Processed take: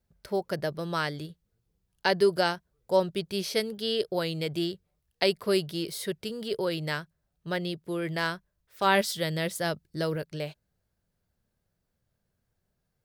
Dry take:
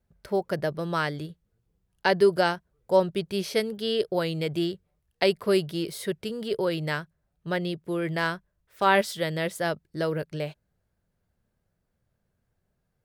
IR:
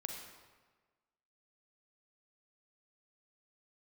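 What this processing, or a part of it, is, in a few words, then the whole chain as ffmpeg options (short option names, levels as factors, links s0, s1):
presence and air boost: -filter_complex "[0:a]asettb=1/sr,asplit=3[s0][s1][s2];[s0]atrim=end=8.844[s3];[s1]atrim=start=8.84:end=10.16,asetpts=PTS-STARTPTS,afade=t=in:d=0.004:c=qsin,afade=t=out:st=1.316:d=0.004:c=qsin,bass=f=250:g=4,treble=f=4000:g=2[s4];[s2]atrim=start=10.156[s5];[s3][s4]acrossfade=d=0.004:c1=hsin:c2=qsin[s6];[s6][s5]acrossfade=d=0.004:c1=qsin:c2=hsin,equalizer=f=4600:t=o:w=1.2:g=4.5,highshelf=f=9900:g=6.5,volume=0.708"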